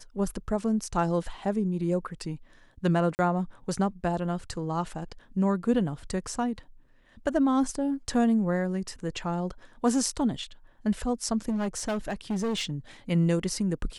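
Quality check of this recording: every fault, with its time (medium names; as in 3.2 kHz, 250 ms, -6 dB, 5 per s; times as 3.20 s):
3.15–3.19 s: dropout 39 ms
11.48–12.72 s: clipped -25 dBFS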